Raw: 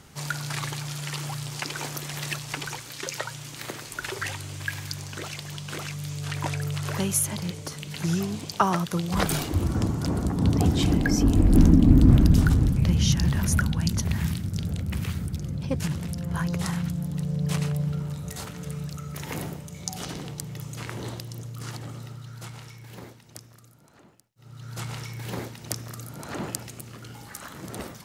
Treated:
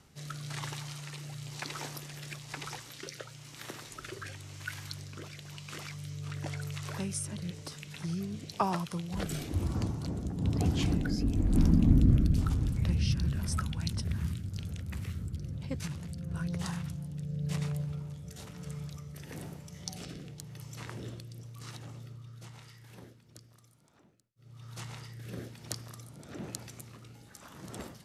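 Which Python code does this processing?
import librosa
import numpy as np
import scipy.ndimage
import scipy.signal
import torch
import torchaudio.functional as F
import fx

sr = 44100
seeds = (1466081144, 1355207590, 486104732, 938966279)

y = fx.formant_shift(x, sr, semitones=-2)
y = fx.rotary(y, sr, hz=1.0)
y = F.gain(torch.from_numpy(y), -6.5).numpy()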